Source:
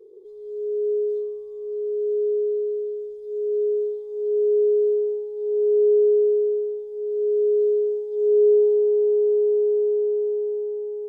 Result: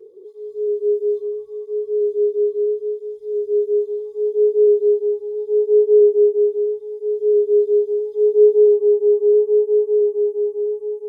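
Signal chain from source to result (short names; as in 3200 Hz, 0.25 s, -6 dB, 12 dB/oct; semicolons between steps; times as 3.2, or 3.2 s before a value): tape flanging out of phase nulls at 1.5 Hz, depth 4 ms; gain +7 dB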